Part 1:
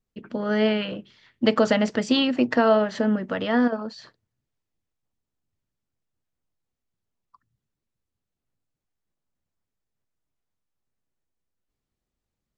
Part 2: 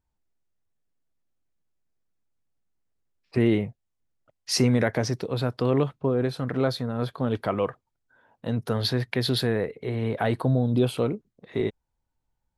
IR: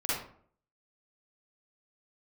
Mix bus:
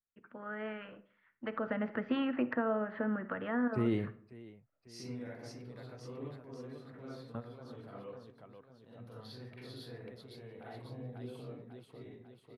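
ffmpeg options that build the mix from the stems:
-filter_complex "[0:a]lowpass=frequency=2500:width=0.5412,lowpass=frequency=2500:width=1.3066,equalizer=frequency=1400:width=0.83:gain=14.5,volume=-13dB,afade=type=in:start_time=1.46:duration=0.42:silence=0.316228,asplit=3[link_01][link_02][link_03];[link_02]volume=-22.5dB[link_04];[1:a]adelay=400,volume=-10dB,asplit=3[link_05][link_06][link_07];[link_06]volume=-21dB[link_08];[link_07]volume=-20.5dB[link_09];[link_03]apad=whole_len=572079[link_10];[link_05][link_10]sidechaingate=range=-33dB:threshold=-58dB:ratio=16:detection=peak[link_11];[2:a]atrim=start_sample=2205[link_12];[link_04][link_08]amix=inputs=2:normalize=0[link_13];[link_13][link_12]afir=irnorm=-1:irlink=0[link_14];[link_09]aecho=0:1:546|1092|1638|2184|2730|3276|3822|4368:1|0.55|0.303|0.166|0.0915|0.0503|0.0277|0.0152[link_15];[link_01][link_11][link_14][link_15]amix=inputs=4:normalize=0,acrossover=split=480[link_16][link_17];[link_17]acompressor=threshold=-40dB:ratio=4[link_18];[link_16][link_18]amix=inputs=2:normalize=0"

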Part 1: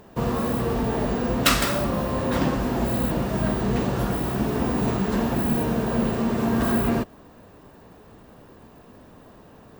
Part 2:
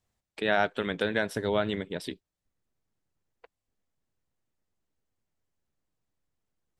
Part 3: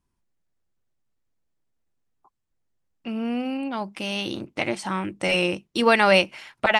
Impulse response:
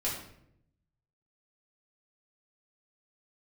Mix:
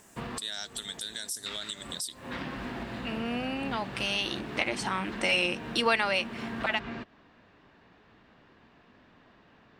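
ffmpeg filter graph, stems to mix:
-filter_complex "[0:a]lowpass=frequency=4200:width=0.5412,lowpass=frequency=4200:width=1.3066,volume=-5dB[link_01];[1:a]aexciter=amount=12.7:drive=9.5:freq=3900,volume=-8dB,asplit=2[link_02][link_03];[2:a]equalizer=frequency=3400:width=0.36:gain=5.5,volume=-0.5dB,afade=type=out:start_time=5.86:duration=0.23:silence=0.446684[link_04];[link_03]apad=whole_len=432048[link_05];[link_01][link_05]sidechaincompress=threshold=-43dB:ratio=5:attack=20:release=220[link_06];[link_06][link_02]amix=inputs=2:normalize=0,equalizer=frequency=500:width_type=o:width=1:gain=-7,equalizer=frequency=1000:width_type=o:width=1:gain=-3,equalizer=frequency=2000:width_type=o:width=1:gain=5,equalizer=frequency=8000:width_type=o:width=1:gain=8,alimiter=limit=-22dB:level=0:latency=1:release=192,volume=0dB[link_07];[link_04][link_07]amix=inputs=2:normalize=0,lowshelf=frequency=220:gain=-10.5,acompressor=threshold=-34dB:ratio=1.5"

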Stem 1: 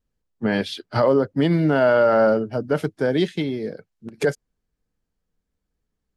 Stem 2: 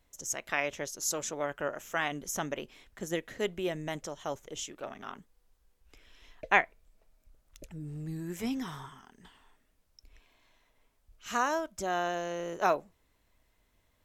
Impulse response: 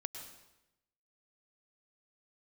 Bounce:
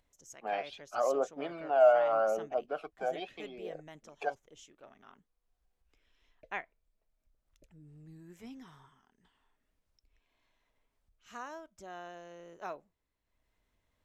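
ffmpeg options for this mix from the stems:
-filter_complex "[0:a]highpass=320,aphaser=in_gain=1:out_gain=1:delay=1.5:decay=0.52:speed=0.8:type=triangular,asplit=3[link_01][link_02][link_03];[link_01]bandpass=frequency=730:width_type=q:width=8,volume=0dB[link_04];[link_02]bandpass=frequency=1090:width_type=q:width=8,volume=-6dB[link_05];[link_03]bandpass=frequency=2440:width_type=q:width=8,volume=-9dB[link_06];[link_04][link_05][link_06]amix=inputs=3:normalize=0,volume=0.5dB[link_07];[1:a]highshelf=frequency=8000:gain=-8,acompressor=mode=upward:threshold=-53dB:ratio=2.5,volume=-14.5dB[link_08];[link_07][link_08]amix=inputs=2:normalize=0"

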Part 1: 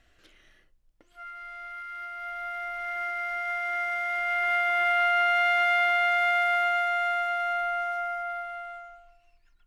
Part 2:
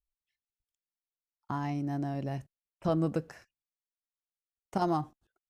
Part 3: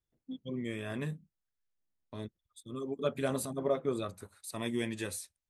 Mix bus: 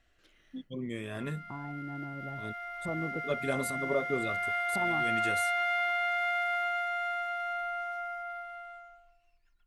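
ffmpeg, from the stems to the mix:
ffmpeg -i stem1.wav -i stem2.wav -i stem3.wav -filter_complex "[0:a]volume=-6.5dB[link_01];[1:a]lowpass=1200,volume=-7.5dB,asplit=2[link_02][link_03];[2:a]adelay=250,volume=0dB[link_04];[link_03]apad=whole_len=253458[link_05];[link_04][link_05]sidechaincompress=threshold=-50dB:ratio=8:attack=49:release=119[link_06];[link_01][link_02][link_06]amix=inputs=3:normalize=0" out.wav

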